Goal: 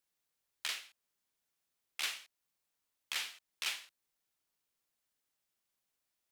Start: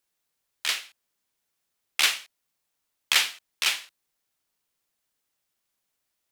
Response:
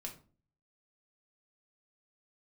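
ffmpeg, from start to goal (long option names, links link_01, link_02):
-af "alimiter=limit=-17.5dB:level=0:latency=1:release=386,volume=-6dB"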